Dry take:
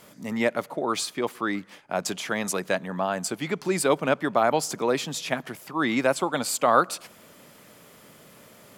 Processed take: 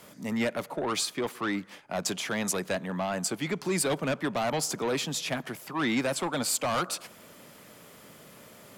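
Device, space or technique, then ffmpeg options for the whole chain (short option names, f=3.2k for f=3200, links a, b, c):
one-band saturation: -filter_complex "[0:a]acrossover=split=200|2900[a][b][c];[b]asoftclip=type=tanh:threshold=-25.5dB[d];[a][d][c]amix=inputs=3:normalize=0"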